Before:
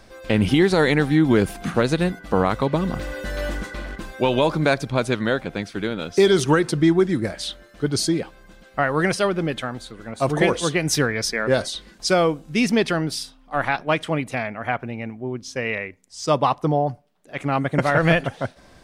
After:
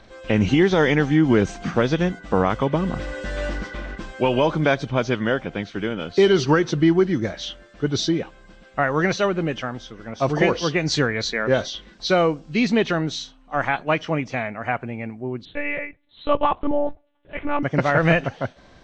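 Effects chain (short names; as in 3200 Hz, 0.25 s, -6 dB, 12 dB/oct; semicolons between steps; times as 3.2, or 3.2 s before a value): nonlinear frequency compression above 2500 Hz 1.5:1; 15.45–17.63 monotone LPC vocoder at 8 kHz 290 Hz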